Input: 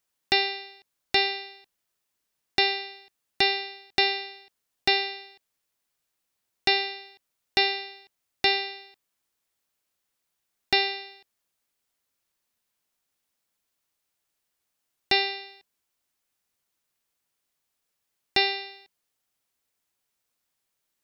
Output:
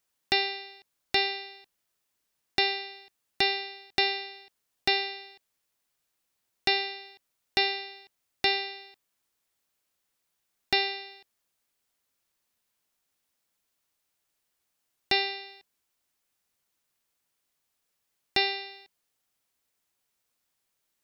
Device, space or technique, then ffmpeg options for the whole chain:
parallel compression: -filter_complex "[0:a]asplit=2[link_01][link_02];[link_02]acompressor=threshold=-39dB:ratio=6,volume=-4dB[link_03];[link_01][link_03]amix=inputs=2:normalize=0,volume=-3.5dB"

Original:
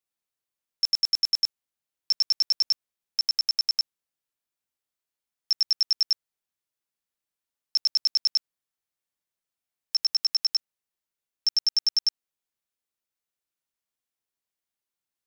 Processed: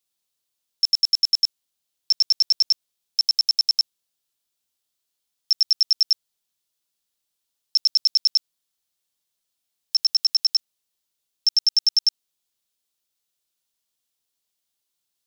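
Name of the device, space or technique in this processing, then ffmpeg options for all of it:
over-bright horn tweeter: -af "highshelf=frequency=2700:width_type=q:width=1.5:gain=6,alimiter=limit=-15.5dB:level=0:latency=1:release=28,volume=4dB"

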